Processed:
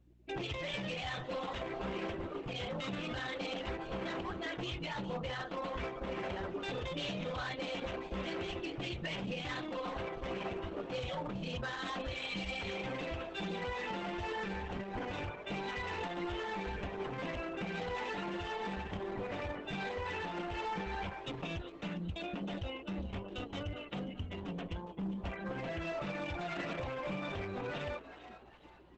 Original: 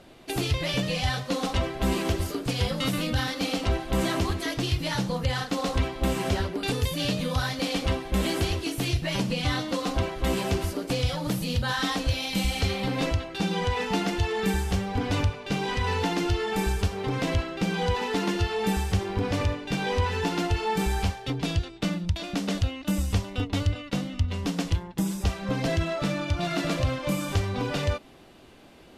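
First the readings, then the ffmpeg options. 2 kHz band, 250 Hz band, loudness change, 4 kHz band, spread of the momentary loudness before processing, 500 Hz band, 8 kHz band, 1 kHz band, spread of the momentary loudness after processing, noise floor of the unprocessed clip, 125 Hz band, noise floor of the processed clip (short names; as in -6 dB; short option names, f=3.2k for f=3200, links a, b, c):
-8.5 dB, -12.5 dB, -12.0 dB, -12.0 dB, 3 LU, -9.5 dB, -21.0 dB, -9.0 dB, 3 LU, -44 dBFS, -16.5 dB, -51 dBFS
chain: -filter_complex "[0:a]lowpass=f=3.7k:w=0.5412,lowpass=f=3.7k:w=1.3066,afftdn=nr=30:nf=-37,lowshelf=f=320:g=-11,aecho=1:1:5.6:0.33,alimiter=level_in=3dB:limit=-24dB:level=0:latency=1:release=56,volume=-3dB,areverse,acompressor=mode=upward:threshold=-47dB:ratio=2.5,areverse,volume=32.5dB,asoftclip=hard,volume=-32.5dB,aeval=exprs='val(0)+0.000794*(sin(2*PI*60*n/s)+sin(2*PI*2*60*n/s)/2+sin(2*PI*3*60*n/s)/3+sin(2*PI*4*60*n/s)/4+sin(2*PI*5*60*n/s)/5)':c=same,asplit=5[a][b][c][d][e];[b]adelay=408,afreqshift=150,volume=-14dB[f];[c]adelay=816,afreqshift=300,volume=-22.2dB[g];[d]adelay=1224,afreqshift=450,volume=-30.4dB[h];[e]adelay=1632,afreqshift=600,volume=-38.5dB[i];[a][f][g][h][i]amix=inputs=5:normalize=0,volume=-1dB" -ar 48000 -c:a libopus -b:a 12k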